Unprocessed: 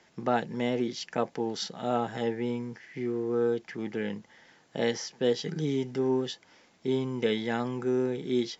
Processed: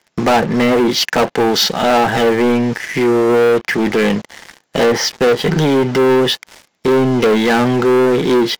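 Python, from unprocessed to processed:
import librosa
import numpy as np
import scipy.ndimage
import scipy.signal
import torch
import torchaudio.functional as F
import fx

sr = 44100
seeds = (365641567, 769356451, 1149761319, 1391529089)

y = fx.env_lowpass_down(x, sr, base_hz=1200.0, full_db=-22.0)
y = fx.low_shelf(y, sr, hz=380.0, db=-6.5)
y = fx.leveller(y, sr, passes=5)
y = y * 10.0 ** (8.5 / 20.0)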